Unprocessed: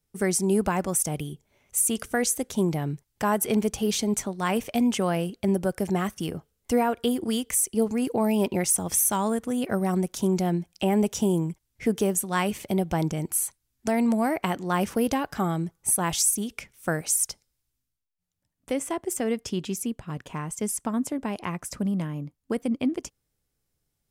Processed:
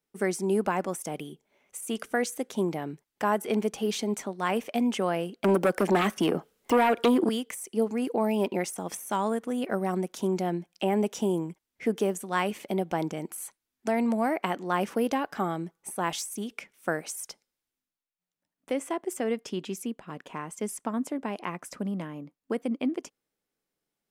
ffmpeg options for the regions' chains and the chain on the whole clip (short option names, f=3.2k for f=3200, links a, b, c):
-filter_complex "[0:a]asettb=1/sr,asplit=3[a][b][c];[a]atrim=end=5.444[d];[b]atrim=start=5.44:end=7.29,asetpts=PTS-STARTPTS,afade=t=in:d=0.004:c=qsin,afade=t=out:st=1.846:d=0.004:c=qsin,acrossover=split=200|2800[e][f][g];[e]acompressor=threshold=-40dB:ratio=4[h];[f]acompressor=threshold=-24dB:ratio=4[i];[g]acompressor=threshold=-45dB:ratio=4[j];[h][i][j]amix=inputs=3:normalize=0,aeval=exprs='0.188*sin(PI/2*2.51*val(0)/0.188)':c=same[k];[c]atrim=start=7.286[l];[d][k]acrossfade=d=0.004:c1=hsin:c2=qsin[m];[m][l]acrossfade=d=0.004:c1=qsin:c2=hsin,bass=f=250:g=-9,treble=f=4k:g=-7,deesser=0.55,lowshelf=f=140:t=q:w=1.5:g=-9.5,volume=-1dB"